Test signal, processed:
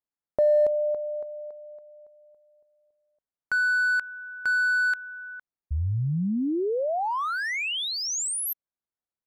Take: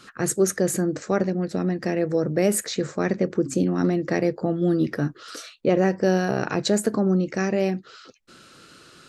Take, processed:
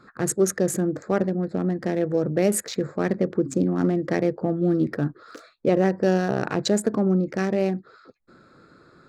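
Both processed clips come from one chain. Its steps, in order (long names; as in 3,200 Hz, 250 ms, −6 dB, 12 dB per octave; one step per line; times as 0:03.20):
adaptive Wiener filter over 15 samples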